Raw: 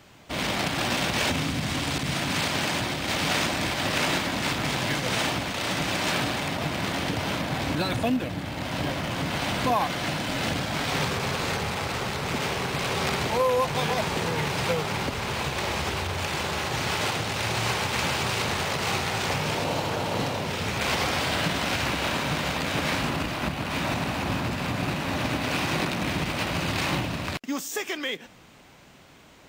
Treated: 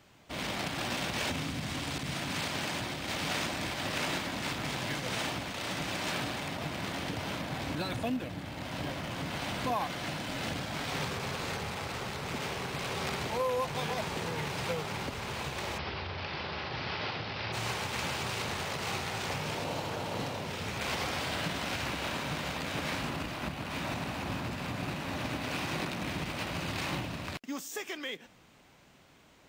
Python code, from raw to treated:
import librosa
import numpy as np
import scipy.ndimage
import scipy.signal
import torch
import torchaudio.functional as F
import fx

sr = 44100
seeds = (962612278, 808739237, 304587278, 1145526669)

y = fx.ellip_lowpass(x, sr, hz=5100.0, order=4, stop_db=40, at=(15.77, 17.52), fade=0.02)
y = y * 10.0 ** (-8.0 / 20.0)